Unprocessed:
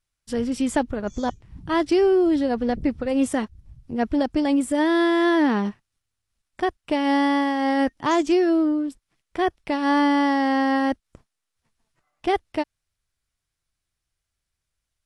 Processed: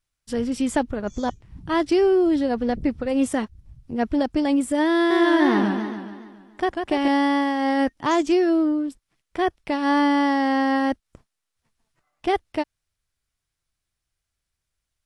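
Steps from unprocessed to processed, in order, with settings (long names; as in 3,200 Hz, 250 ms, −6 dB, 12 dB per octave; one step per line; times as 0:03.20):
0:04.96–0:07.08: feedback echo with a swinging delay time 141 ms, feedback 56%, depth 145 cents, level −5 dB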